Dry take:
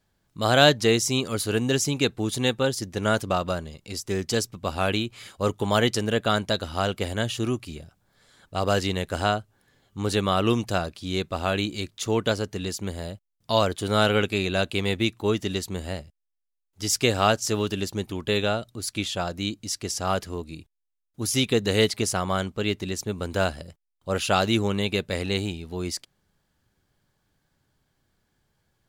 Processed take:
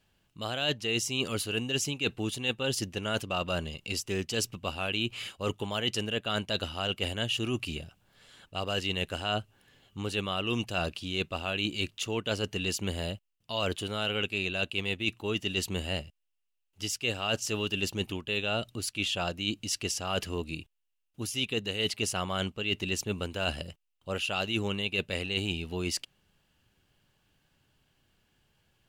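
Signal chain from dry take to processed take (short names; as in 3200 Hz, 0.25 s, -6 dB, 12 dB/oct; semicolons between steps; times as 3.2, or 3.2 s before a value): bell 2800 Hz +13.5 dB 0.35 oct; reverse; compressor 10:1, threshold -27 dBFS, peak gain reduction 19 dB; reverse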